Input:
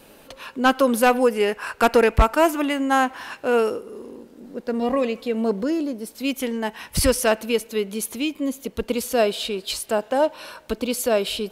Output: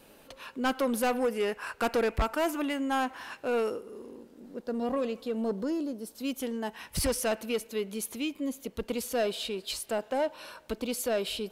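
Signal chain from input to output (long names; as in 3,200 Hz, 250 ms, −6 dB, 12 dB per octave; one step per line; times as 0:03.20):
soft clipping −14.5 dBFS, distortion −13 dB
0:04.61–0:06.73: parametric band 2,200 Hz −6.5 dB 0.6 octaves
level −7 dB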